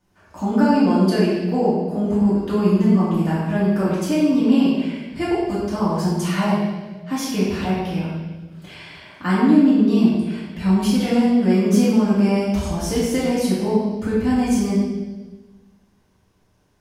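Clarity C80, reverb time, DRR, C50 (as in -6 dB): 1.5 dB, 1.3 s, -10.0 dB, -1.0 dB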